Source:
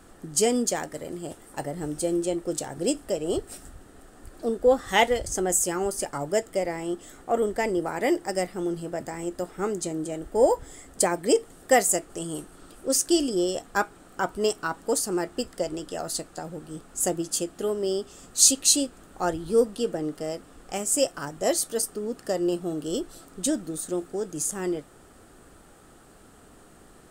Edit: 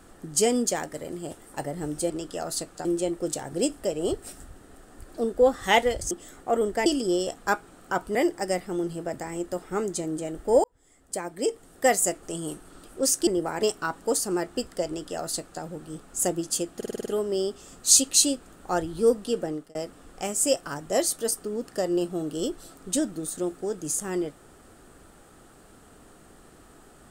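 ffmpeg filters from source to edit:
-filter_complex "[0:a]asplit=16[a][b][c][d][e][f][g][h][i][j][k][l][m][n][o][p];[a]atrim=end=2.102[q];[b]atrim=start=15.678:end=16.432[r];[c]atrim=start=2.098:end=5.362[s];[d]atrim=start=6.918:end=7.672[t];[e]atrim=start=13.138:end=14.432[u];[f]atrim=start=8.018:end=10.51,asetpts=PTS-STARTPTS,afade=t=out:st=2.488:d=0.004:c=hsin[v];[g]atrim=start=10.51:end=13.142,asetpts=PTS-STARTPTS,afade=t=in:d=1.53[w];[h]atrim=start=7.668:end=8.022[x];[i]atrim=start=14.428:end=17.622[y];[j]atrim=start=17.568:end=17.622[z];[k]atrim=start=17.568:end=17.622[aa];[l]atrim=start=17.568:end=17.622[ab];[m]atrim=start=17.568:end=17.622[ac];[n]atrim=start=17.568:end=17.622[ad];[o]atrim=start=17.568:end=20.26,asetpts=PTS-STARTPTS,afade=t=out:st=2.412:d=0.28[ae];[p]atrim=start=20.26,asetpts=PTS-STARTPTS,afade=t=in:d=0.004:c=hsin[af];[q][r]acrossfade=d=0.004:c1=hsin:c2=hsin[ag];[ag][s]acrossfade=d=0.004:c1=hsin:c2=hsin[ah];[ah][t]acrossfade=d=0.004:c1=hsin:c2=hsin[ai];[ai][u]acrossfade=d=0.004:c1=hsin:c2=hsin[aj];[v][w]concat=n=2:v=0:a=1[ak];[aj][ak]acrossfade=d=0.004:c1=hsin:c2=hsin[al];[al][x]acrossfade=d=0.004:c1=hsin:c2=hsin[am];[am][y]acrossfade=d=0.004:c1=hsin:c2=hsin[an];[an][z]acrossfade=d=0.004:c1=hsin:c2=hsin[ao];[ao][aa]acrossfade=d=0.004:c1=hsin:c2=hsin[ap];[ap][ab]acrossfade=d=0.004:c1=hsin:c2=hsin[aq];[aq][ac]acrossfade=d=0.004:c1=hsin:c2=hsin[ar];[ar][ad]acrossfade=d=0.004:c1=hsin:c2=hsin[as];[ae][af]concat=n=2:v=0:a=1[at];[as][at]acrossfade=d=0.004:c1=hsin:c2=hsin"

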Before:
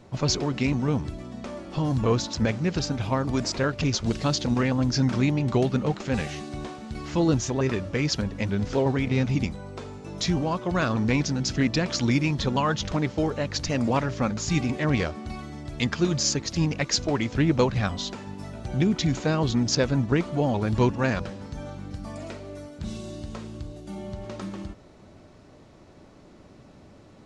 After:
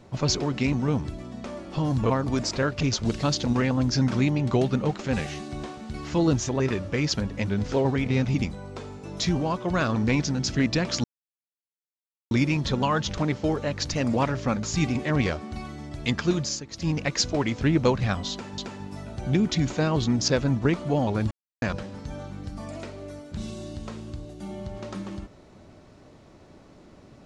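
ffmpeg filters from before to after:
-filter_complex "[0:a]asplit=8[a][b][c][d][e][f][g][h];[a]atrim=end=2.102[i];[b]atrim=start=3.108:end=12.05,asetpts=PTS-STARTPTS,afade=t=out:st=8.938:d=0.004:c=hsin,apad=pad_dur=1.27[j];[c]atrim=start=12.05:end=16.37,asetpts=PTS-STARTPTS,afade=t=in:d=0.004:c=hsin,afade=t=out:st=4:d=0.32:silence=0.251189[k];[d]atrim=start=16.37:end=16.4,asetpts=PTS-STARTPTS,volume=-12dB[l];[e]atrim=start=16.4:end=18.322,asetpts=PTS-STARTPTS,afade=t=in:d=0.32:silence=0.251189[m];[f]atrim=start=18.048:end=20.78,asetpts=PTS-STARTPTS,afade=t=out:st=2.728:d=0.004:c=hsin[n];[g]atrim=start=20.78:end=21.09,asetpts=PTS-STARTPTS,volume=0[o];[h]atrim=start=21.09,asetpts=PTS-STARTPTS,afade=t=in:d=0.004:c=hsin[p];[j][k][l][m]concat=n=4:v=0:a=1[q];[i][q]acrossfade=d=0.004:c1=hsin:c2=hsin[r];[n][o][p]concat=n=3:v=0:a=1[s];[r][s]acrossfade=d=0.004:c1=hsin:c2=hsin"

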